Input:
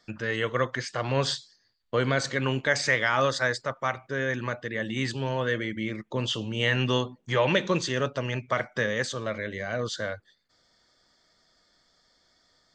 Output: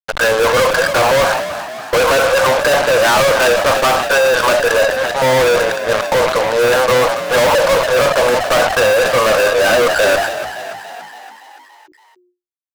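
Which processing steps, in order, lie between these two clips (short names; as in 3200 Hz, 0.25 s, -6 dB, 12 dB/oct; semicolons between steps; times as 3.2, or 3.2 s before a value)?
treble ducked by the level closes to 1300 Hz, closed at -25.5 dBFS; brick-wall FIR band-pass 460–1700 Hz; fuzz box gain 52 dB, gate -51 dBFS; frequency-shifting echo 0.284 s, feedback 61%, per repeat +51 Hz, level -12 dB; sustainer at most 55 dB/s; gain +2.5 dB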